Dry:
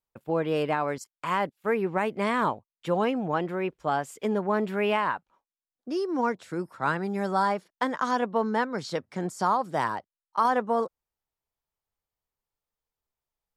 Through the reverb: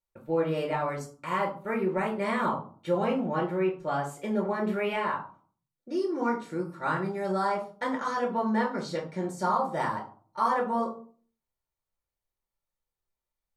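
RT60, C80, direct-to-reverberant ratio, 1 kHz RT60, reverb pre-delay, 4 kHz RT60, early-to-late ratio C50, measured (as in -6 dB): 0.45 s, 14.0 dB, -1.0 dB, 0.40 s, 3 ms, 0.25 s, 9.5 dB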